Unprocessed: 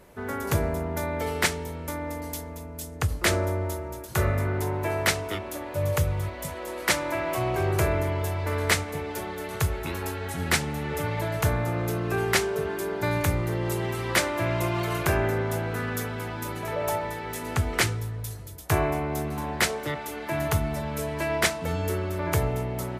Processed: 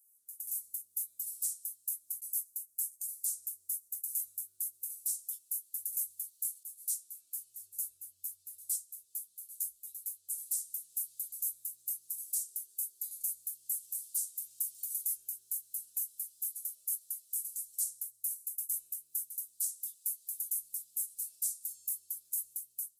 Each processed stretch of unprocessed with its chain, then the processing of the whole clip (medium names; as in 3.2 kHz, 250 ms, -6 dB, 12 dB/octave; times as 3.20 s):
6.63–10.30 s: tone controls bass +5 dB, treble -4 dB + three-phase chorus
whole clip: inverse Chebyshev high-pass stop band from 2.2 kHz, stop band 70 dB; peak limiter -32 dBFS; level rider gain up to 10 dB